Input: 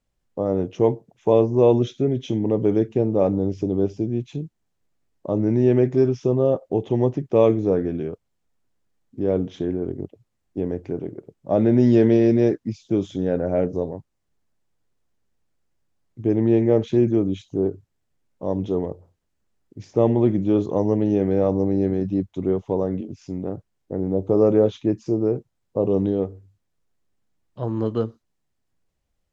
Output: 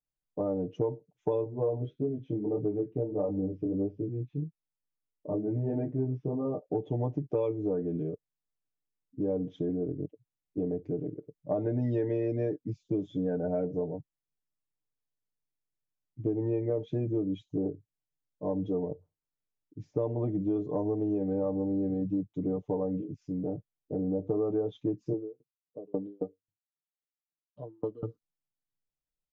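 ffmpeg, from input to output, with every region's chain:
-filter_complex "[0:a]asettb=1/sr,asplit=3[s0][s1][s2];[s0]atrim=end=1.444[s3];[s1]atrim=start=1.44:end=6.61,asetpts=PTS-STARTPTS,afade=t=in:d=0.004:c=qsin,afade=t=out:st=5.166:d=0.004:c=qsin,lowpass=2200,flanger=delay=19:depth=4.9:speed=1.6[s4];[s2]atrim=start=6.606[s5];[s3][s4]acrossfade=d=0.004:c1=hsin:c2=qsin[s6];[s6][s5]acrossfade=d=0.004:c1=qsin:c2=hsin,asettb=1/sr,asplit=3[s7][s8][s9];[s7]atrim=end=25.134[s10];[s8]atrim=start=25.13:end=28.03,asetpts=PTS-STARTPTS,afade=t=in:d=0.004:c=qsin,afade=t=out:st=2.896:d=0.004:c=qsin,highpass=160,aeval=exprs='val(0)*pow(10,-32*if(lt(mod(3.7*n/s,1),2*abs(3.7)/1000),1-mod(3.7*n/s,1)/(2*abs(3.7)/1000),(mod(3.7*n/s,1)-2*abs(3.7)/1000)/(1-2*abs(3.7)/1000))/20)':c=same[s11];[s9]atrim=start=28.026[s12];[s10][s11]acrossfade=d=0.004:c1=hsin:c2=qsin[s13];[s13][s12]acrossfade=d=0.004:c1=qsin:c2=hsin,afftdn=nr=16:nf=-36,aecho=1:1:6.7:0.82,acompressor=threshold=0.1:ratio=6,volume=0.473"

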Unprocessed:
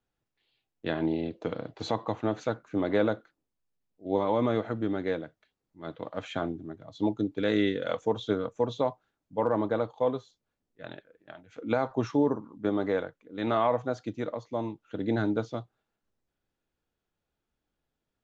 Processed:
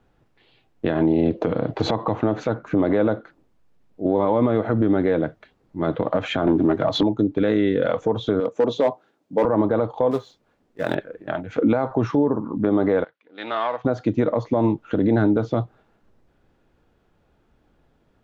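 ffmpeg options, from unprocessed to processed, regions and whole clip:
-filter_complex "[0:a]asettb=1/sr,asplit=3[s0][s1][s2];[s0]atrim=end=6.474[s3];[s1]atrim=start=6.47:end=7.03,asetpts=PTS-STARTPTS,afade=t=in:d=0.004:c=qsin,afade=t=out:st=0.556:d=0.004:c=qsin,highpass=50,asplit=2[s4][s5];[s5]highpass=f=720:p=1,volume=14.1,asoftclip=type=tanh:threshold=0.126[s6];[s4][s6]amix=inputs=2:normalize=0,lowpass=f=3800:p=1,volume=0.501[s7];[s2]atrim=start=7.026[s8];[s3][s7]acrossfade=d=0.004:c1=hsin:c2=qsin[s9];[s9][s8]acrossfade=d=0.004:c1=qsin:c2=hsin,asettb=1/sr,asplit=3[s10][s11][s12];[s10]atrim=end=8.404[s13];[s11]atrim=start=8.4:end=9.45,asetpts=PTS-STARTPTS,afade=t=in:d=0.004:c=qsin,afade=t=out:st=1.046:d=0.004:c=qsin,asoftclip=type=hard:threshold=0.0708,highpass=310,equalizer=f=1300:w=0.57:g=-7.5[s14];[s12]atrim=start=9.446[s15];[s13][s14]acrossfade=d=0.004:c1=hsin:c2=qsin[s16];[s16][s15]acrossfade=d=0.004:c1=qsin:c2=hsin,asettb=1/sr,asplit=3[s17][s18][s19];[s17]atrim=end=10.114[s20];[s18]atrim=start=10.11:end=10.95,asetpts=PTS-STARTPTS,afade=t=in:d=0.004:c=qsin,afade=t=out:st=0.836:d=0.004:c=qsin,lowshelf=f=140:g=-11,acrusher=bits=3:mode=log:mix=0:aa=0.000001[s21];[s19]atrim=start=10.946[s22];[s20][s21]acrossfade=d=0.004:c1=hsin:c2=qsin[s23];[s23][s22]acrossfade=d=0.004:c1=qsin:c2=hsin,asettb=1/sr,asplit=3[s24][s25][s26];[s24]atrim=end=13.044[s27];[s25]atrim=start=13.04:end=13.85,asetpts=PTS-STARTPTS,afade=t=in:d=0.004:c=qsin,afade=t=out:st=0.806:d=0.004:c=qsin,aeval=exprs='if(lt(val(0),0),0.708*val(0),val(0))':c=same,lowpass=f=4500:w=0.5412,lowpass=f=4500:w=1.3066,aderivative[s28];[s26]atrim=start=13.846[s29];[s27][s28]acrossfade=d=0.004:c1=hsin:c2=qsin[s30];[s30][s29]acrossfade=d=0.004:c1=qsin:c2=hsin,lowpass=f=1200:p=1,acompressor=threshold=0.0178:ratio=12,alimiter=level_in=39.8:limit=0.891:release=50:level=0:latency=1,volume=0.355"

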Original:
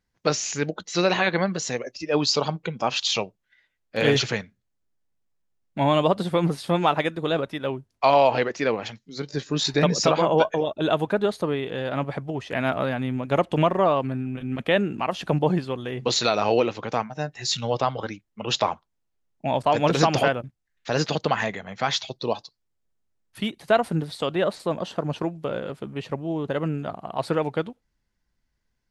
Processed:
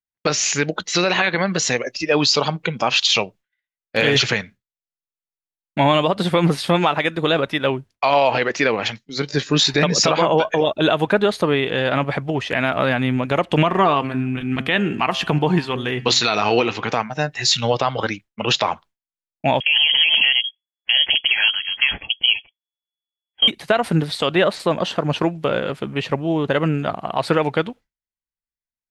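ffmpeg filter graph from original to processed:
-filter_complex "[0:a]asettb=1/sr,asplit=3[s0][s1][s2];[s0]atrim=end=13.654[s3];[s1]atrim=start=13.65:end=16.92,asetpts=PTS-STARTPTS,afade=t=in:d=0.004:c=qsin,afade=t=out:st=3.266:d=0.004:c=qsin,equalizer=f=560:w=6.8:g=-12.5,bandreject=f=132.3:t=h:w=4,bandreject=f=264.6:t=h:w=4,bandreject=f=396.9:t=h:w=4,bandreject=f=529.2:t=h:w=4,bandreject=f=661.5:t=h:w=4,bandreject=f=793.8:t=h:w=4,bandreject=f=926.1:t=h:w=4,bandreject=f=1058.4:t=h:w=4,bandreject=f=1190.7:t=h:w=4,bandreject=f=1323:t=h:w=4,bandreject=f=1455.3:t=h:w=4,bandreject=f=1587.6:t=h:w=4,bandreject=f=1719.9:t=h:w=4,bandreject=f=1852.2:t=h:w=4,bandreject=f=1984.5:t=h:w=4,bandreject=f=2116.8:t=h:w=4,bandreject=f=2249.1:t=h:w=4,bandreject=f=2381.4:t=h:w=4,bandreject=f=2513.7:t=h:w=4,bandreject=f=2646:t=h:w=4,bandreject=f=2778.3:t=h:w=4,bandreject=f=2910.6:t=h:w=4,bandreject=f=3042.9:t=h:w=4,bandreject=f=3175.2:t=h:w=4,bandreject=f=3307.5:t=h:w=4[s4];[s2]atrim=start=16.916[s5];[s3][s4]acrossfade=d=0.004:c1=hsin:c2=qsin[s6];[s6][s5]acrossfade=d=0.004:c1=qsin:c2=hsin,asettb=1/sr,asplit=3[s7][s8][s9];[s7]atrim=end=19.604[s10];[s8]atrim=start=19.6:end=23.48,asetpts=PTS-STARTPTS,afade=t=in:d=0.004:c=qsin,afade=t=out:st=3.876:d=0.004:c=qsin,equalizer=f=2100:w=2.6:g=-15,acompressor=threshold=0.0891:ratio=12:attack=3.2:release=140:knee=1:detection=peak,lowpass=f=2900:t=q:w=0.5098,lowpass=f=2900:t=q:w=0.6013,lowpass=f=2900:t=q:w=0.9,lowpass=f=2900:t=q:w=2.563,afreqshift=-3400[s11];[s9]atrim=start=23.476[s12];[s10][s11]acrossfade=d=0.004:c1=hsin:c2=qsin[s13];[s13][s12]acrossfade=d=0.004:c1=qsin:c2=hsin,agate=range=0.0224:threshold=0.00794:ratio=3:detection=peak,equalizer=f=2400:t=o:w=2:g=6.5,alimiter=limit=0.224:level=0:latency=1:release=133,volume=2.24"

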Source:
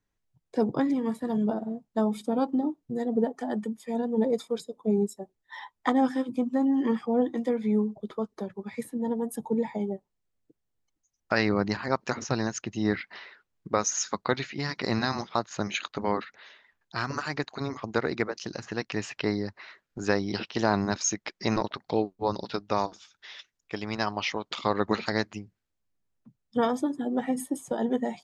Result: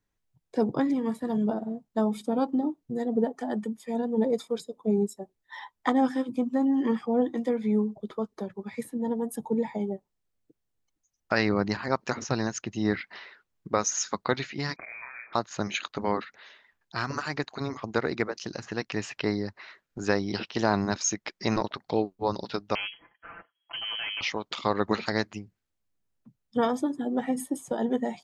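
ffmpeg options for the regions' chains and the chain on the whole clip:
-filter_complex "[0:a]asettb=1/sr,asplit=3[s0][s1][s2];[s0]atrim=end=14.764[s3];[s1]atrim=start=14.76:end=15.33,asetpts=PTS-STARTPTS,afade=t=in:d=0.004:c=qsin,afade=t=out:st=0.566:d=0.004:c=qsin,acompressor=threshold=0.0126:ratio=8:attack=3.2:release=140:knee=1:detection=peak,asplit=2[s4][s5];[s5]adelay=33,volume=0.501[s6];[s4][s6]amix=inputs=2:normalize=0,atrim=end_sample=25137,lowpass=f=2200:t=q:w=0.5098,lowpass=f=2200:t=q:w=0.6013,lowpass=f=2200:t=q:w=0.9,lowpass=f=2200:t=q:w=2.563,afreqshift=-2600[s7];[s2]atrim=start=15.326[s8];[s3][s7]acrossfade=d=0.004:c1=hsin:c2=qsin[s9];[s9][s8]acrossfade=d=0.004:c1=qsin:c2=hsin,asettb=1/sr,asplit=3[s10][s11][s12];[s10]atrim=end=22.754[s13];[s11]atrim=start=22.75:end=24.21,asetpts=PTS-STARTPTS,afade=t=in:d=0.004:c=qsin,afade=t=out:st=1.456:d=0.004:c=qsin,aecho=1:1:5.7:0.94,atrim=end_sample=64386,volume=35.5,asoftclip=hard,volume=0.0282,lowpass=f=2800:t=q:w=0.5098,lowpass=f=2800:t=q:w=0.6013,lowpass=f=2800:t=q:w=0.9,lowpass=f=2800:t=q:w=2.563,afreqshift=-3300[s14];[s12]atrim=start=24.206[s15];[s13][s14]acrossfade=d=0.004:c1=hsin:c2=qsin[s16];[s16][s15]acrossfade=d=0.004:c1=qsin:c2=hsin"

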